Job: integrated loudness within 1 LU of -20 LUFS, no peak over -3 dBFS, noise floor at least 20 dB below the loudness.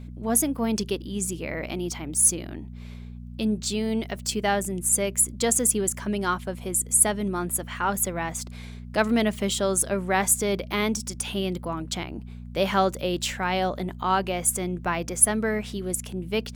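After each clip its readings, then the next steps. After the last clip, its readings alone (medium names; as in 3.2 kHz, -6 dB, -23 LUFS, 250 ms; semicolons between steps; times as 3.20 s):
hum 60 Hz; highest harmonic 240 Hz; hum level -37 dBFS; loudness -25.0 LUFS; peak level -4.5 dBFS; loudness target -20.0 LUFS
-> de-hum 60 Hz, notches 4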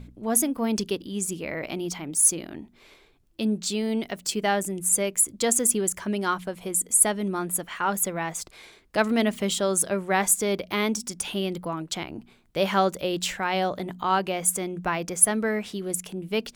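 hum not found; loudness -25.0 LUFS; peak level -4.5 dBFS; loudness target -20.0 LUFS
-> trim +5 dB; peak limiter -3 dBFS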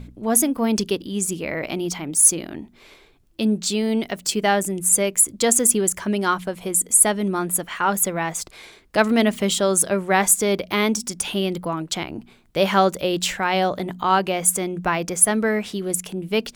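loudness -20.0 LUFS; peak level -3.0 dBFS; noise floor -52 dBFS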